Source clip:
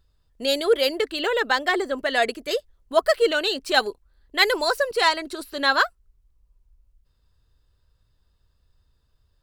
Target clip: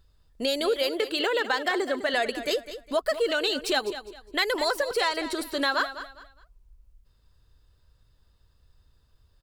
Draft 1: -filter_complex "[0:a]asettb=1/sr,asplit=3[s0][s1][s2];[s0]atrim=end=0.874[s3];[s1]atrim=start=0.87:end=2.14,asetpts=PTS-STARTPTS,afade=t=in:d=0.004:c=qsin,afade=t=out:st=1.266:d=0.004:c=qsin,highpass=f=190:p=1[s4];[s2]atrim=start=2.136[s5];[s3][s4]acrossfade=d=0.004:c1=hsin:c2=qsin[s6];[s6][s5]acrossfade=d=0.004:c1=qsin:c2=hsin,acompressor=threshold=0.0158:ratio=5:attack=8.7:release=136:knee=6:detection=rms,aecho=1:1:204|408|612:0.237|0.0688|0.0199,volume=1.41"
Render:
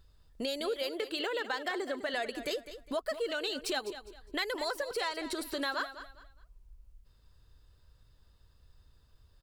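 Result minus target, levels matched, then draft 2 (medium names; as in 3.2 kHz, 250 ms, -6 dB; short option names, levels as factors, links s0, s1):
compression: peak gain reduction +9 dB
-filter_complex "[0:a]asettb=1/sr,asplit=3[s0][s1][s2];[s0]atrim=end=0.874[s3];[s1]atrim=start=0.87:end=2.14,asetpts=PTS-STARTPTS,afade=t=in:d=0.004:c=qsin,afade=t=out:st=1.266:d=0.004:c=qsin,highpass=f=190:p=1[s4];[s2]atrim=start=2.136[s5];[s3][s4]acrossfade=d=0.004:c1=hsin:c2=qsin[s6];[s6][s5]acrossfade=d=0.004:c1=qsin:c2=hsin,acompressor=threshold=0.0562:ratio=5:attack=8.7:release=136:knee=6:detection=rms,aecho=1:1:204|408|612:0.237|0.0688|0.0199,volume=1.41"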